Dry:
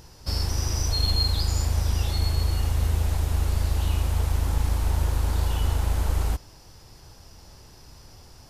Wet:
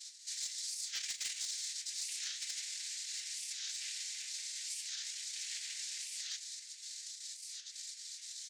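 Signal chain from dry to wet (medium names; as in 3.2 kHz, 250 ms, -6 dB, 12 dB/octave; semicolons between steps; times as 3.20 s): random holes in the spectrogram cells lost 24%; inverse Chebyshev high-pass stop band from 1.3 kHz, stop band 50 dB; peaking EQ 5.1 kHz +10.5 dB 0.49 oct; comb 4.3 ms, depth 77%; reverse; compression 16:1, threshold -38 dBFS, peak gain reduction 23.5 dB; reverse; tempo 1×; noise-vocoded speech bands 6; overload inside the chain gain 32.5 dB; reverse echo 66 ms -15.5 dB; reverberation, pre-delay 3 ms, DRR 8 dB; warped record 45 rpm, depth 250 cents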